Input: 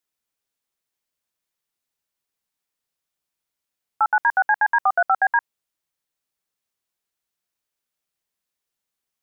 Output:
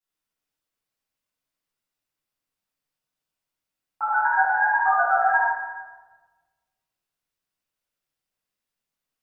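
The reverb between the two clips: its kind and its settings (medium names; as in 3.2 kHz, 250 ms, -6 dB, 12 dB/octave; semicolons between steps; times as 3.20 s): simulated room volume 1000 m³, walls mixed, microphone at 9.5 m; trim -15.5 dB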